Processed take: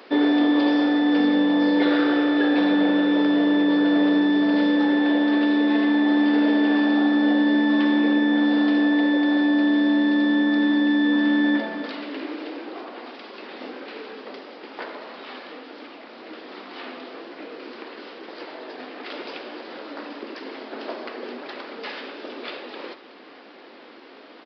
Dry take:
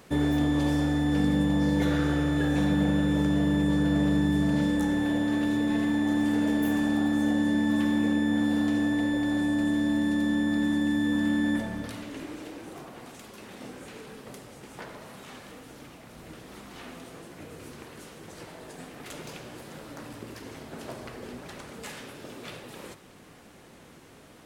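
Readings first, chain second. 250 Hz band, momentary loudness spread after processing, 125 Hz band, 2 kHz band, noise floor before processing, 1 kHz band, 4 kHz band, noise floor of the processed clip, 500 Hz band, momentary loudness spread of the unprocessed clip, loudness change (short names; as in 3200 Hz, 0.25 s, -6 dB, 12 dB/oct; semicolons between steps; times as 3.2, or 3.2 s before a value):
+6.0 dB, 19 LU, under -10 dB, +8.0 dB, -52 dBFS, +8.0 dB, +8.0 dB, -46 dBFS, +8.0 dB, 20 LU, +6.0 dB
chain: downsampling 11025 Hz; steep high-pass 260 Hz 36 dB/oct; gain +8 dB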